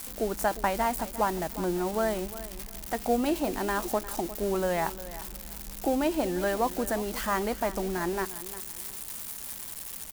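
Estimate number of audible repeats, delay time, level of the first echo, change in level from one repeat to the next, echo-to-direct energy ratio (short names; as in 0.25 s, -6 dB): 2, 0.354 s, -15.0 dB, -12.5 dB, -14.5 dB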